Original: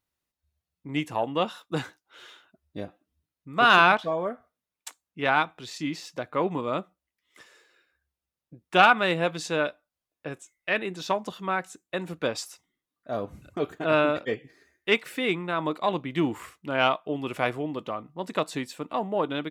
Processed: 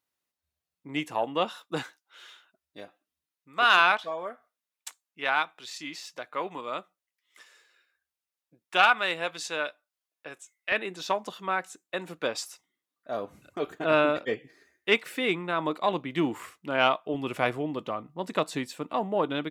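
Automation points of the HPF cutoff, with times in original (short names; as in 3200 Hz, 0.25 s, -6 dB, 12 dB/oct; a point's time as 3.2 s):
HPF 6 dB/oct
310 Hz
from 1.83 s 1100 Hz
from 10.72 s 400 Hz
from 13.67 s 180 Hz
from 17.14 s 55 Hz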